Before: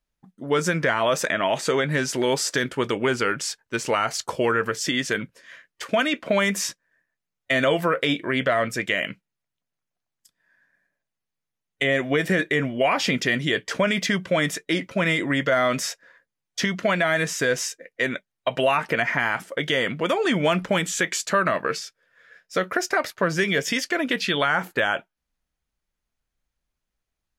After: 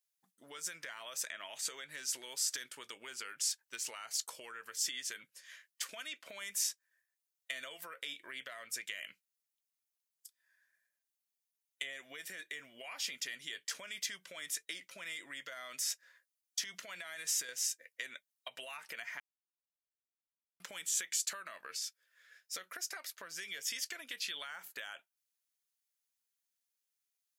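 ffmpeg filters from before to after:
-filter_complex "[0:a]asettb=1/sr,asplit=3[a][b][c];[a]atrim=end=15.764[d];[b]atrim=start=15.76:end=17.49,asetpts=PTS-STARTPTS,afade=t=in:d=0.004:c=qsin,afade=t=out:st=1.726:d=0.004:c=qsin,acompressor=threshold=-26dB:ratio=6:attack=3.2:release=140:knee=1:detection=peak[e];[c]atrim=start=17.486[f];[d][e]acrossfade=d=0.004:c1=hsin:c2=qsin[g];[g][f]acrossfade=d=0.004:c1=qsin:c2=hsin,asplit=3[h][i][j];[h]atrim=end=19.2,asetpts=PTS-STARTPTS,afade=t=out:st=19.196:d=0.004:c=hsin[k];[i]atrim=start=19.2:end=20.6,asetpts=PTS-STARTPTS,volume=0[l];[j]atrim=start=20.6,asetpts=PTS-STARTPTS,afade=t=in:d=0.004:c=hsin[m];[k][l][m]concat=n=3:v=0:a=1,acompressor=threshold=-29dB:ratio=12,aderivative,volume=1.5dB"

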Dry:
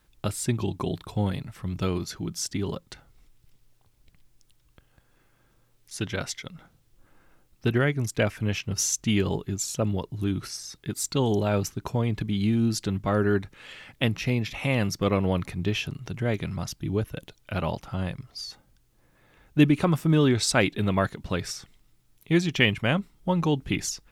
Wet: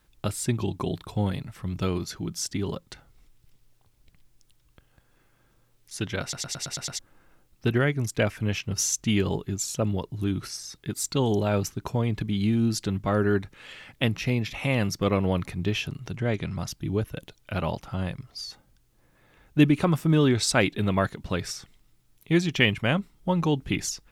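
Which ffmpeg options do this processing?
-filter_complex "[0:a]asettb=1/sr,asplit=3[a][b][c];[a]atrim=end=16.164[d];[b]atrim=start=16.16:end=16.56,asetpts=PTS-STARTPTS,afade=t=in:d=0.004:c=qsin,afade=t=out:st=0.396:d=0.004:c=qsin,lowpass=8.3k[e];[c]atrim=start=16.556[f];[d][e]acrossfade=d=0.004:c1=hsin:c2=qsin[g];[g][f]acrossfade=d=0.004:c1=qsin:c2=hsin,asplit=8[h][i][j][k][l][m][n][o];[h]atrim=end=6.332[p];[i]atrim=start=6.218:end=6.332[q];[j]atrim=start=6.218:end=6.332[r];[k]atrim=start=6.218:end=6.332[s];[l]atrim=start=6.218:end=6.332[t];[m]atrim=start=6.218:end=6.332[u];[n]atrim=start=6.218:end=6.332[v];[o]atrim=start=6.988[w];[p][q]acrossfade=d=0.004:c1=hsin:c2=hsin[x];[x][r]acrossfade=d=0.004:c1=hsin:c2=hsin[y];[y][s]acrossfade=d=0.004:c1=hsin:c2=hsin[z];[z][t]acrossfade=d=0.004:c1=hsin:c2=hsin[aa];[aa][u]acrossfade=d=0.004:c1=hsin:c2=hsin[ab];[ab][v]acrossfade=d=0.004:c1=hsin:c2=hsin[ac];[ac][w]acrossfade=d=0.004:c1=hsin:c2=hsin"

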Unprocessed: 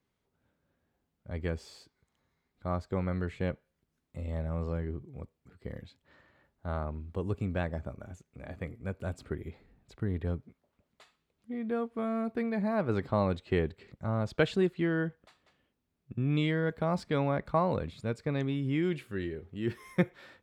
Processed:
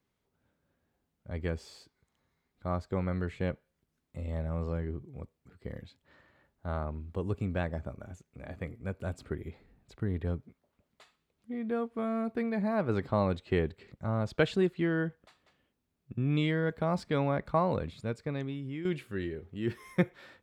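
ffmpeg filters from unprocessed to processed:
-filter_complex "[0:a]asplit=2[a][b];[a]atrim=end=18.85,asetpts=PTS-STARTPTS,afade=t=out:st=17.91:d=0.94:silence=0.298538[c];[b]atrim=start=18.85,asetpts=PTS-STARTPTS,afade=t=in:d=0.004:c=hsin:silence=0.298538[d];[c][d]concat=n=2:v=0:a=1"

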